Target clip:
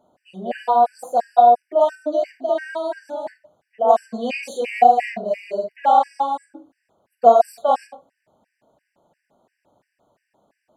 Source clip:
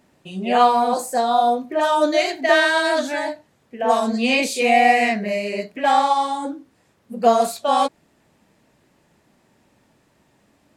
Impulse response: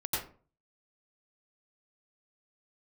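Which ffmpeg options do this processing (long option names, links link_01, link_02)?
-filter_complex "[0:a]equalizer=frequency=670:width=0.91:gain=14.5,asettb=1/sr,asplit=3[link_01][link_02][link_03];[link_01]atrim=end=1.954[link_04];[link_02]atrim=start=1.95:end=3.27,asetpts=PTS-STARTPTS,afade=type=in:duration=0.004:curve=qsin,afade=type=out:start_time=1.316:duration=0.004:curve=qsin,acrossover=split=400[link_05][link_06];[link_06]acompressor=threshold=-27dB:ratio=1.5[link_07];[link_05][link_07]amix=inputs=2:normalize=0[link_08];[link_03]atrim=start=3.266[link_09];[link_04][link_08]acrossfade=duration=0.004:curve1=hsin:curve2=qsin[link_10];[link_10][link_09]acrossfade=duration=0.004:curve1=qsin:curve2=hsin,asplit=2[link_11][link_12];[1:a]atrim=start_sample=2205,asetrate=83790,aresample=44100[link_13];[link_12][link_13]afir=irnorm=-1:irlink=0,volume=-9dB[link_14];[link_11][link_14]amix=inputs=2:normalize=0,afftfilt=real='re*gt(sin(2*PI*2.9*pts/sr)*(1-2*mod(floor(b*sr/1024/1500),2)),0)':imag='im*gt(sin(2*PI*2.9*pts/sr)*(1-2*mod(floor(b*sr/1024/1500),2)),0)':win_size=1024:overlap=0.75,volume=-11dB"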